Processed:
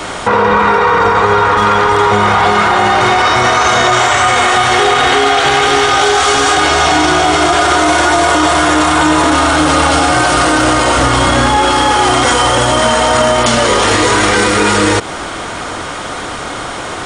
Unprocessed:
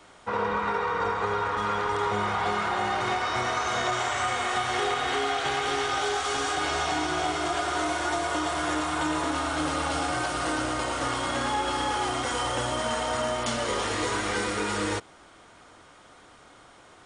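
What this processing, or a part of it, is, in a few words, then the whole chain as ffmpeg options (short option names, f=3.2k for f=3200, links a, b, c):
loud club master: -filter_complex "[0:a]asettb=1/sr,asplit=3[a][b][c];[a]atrim=end=10.974[d];[b]atrim=start=10.97:end=11.57,asetpts=PTS-STARTPTS,afade=t=in:d=0.004:c=qsin,afade=t=out:st=0.596:d=0.004:c=qsin,lowshelf=f=140:g=10[e];[c]atrim=start=11.566[f];[d][e]acrossfade=d=0.004:c1=hsin:c2=qsin[g];[g][f]acrossfade=d=0.004:c1=qsin:c2=hsin,acompressor=threshold=-32dB:ratio=2,asoftclip=type=hard:threshold=-22.5dB,alimiter=level_in=31.5dB:limit=-1dB:release=50:level=0:latency=1,volume=-1dB"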